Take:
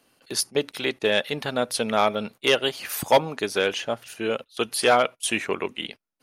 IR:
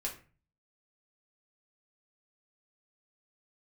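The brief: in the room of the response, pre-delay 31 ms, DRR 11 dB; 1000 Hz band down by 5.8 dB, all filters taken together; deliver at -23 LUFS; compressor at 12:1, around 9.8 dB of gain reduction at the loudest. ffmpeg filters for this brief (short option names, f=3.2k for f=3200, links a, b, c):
-filter_complex "[0:a]equalizer=f=1k:t=o:g=-8.5,acompressor=threshold=-25dB:ratio=12,asplit=2[a][b];[1:a]atrim=start_sample=2205,adelay=31[c];[b][c]afir=irnorm=-1:irlink=0,volume=-12.5dB[d];[a][d]amix=inputs=2:normalize=0,volume=8dB"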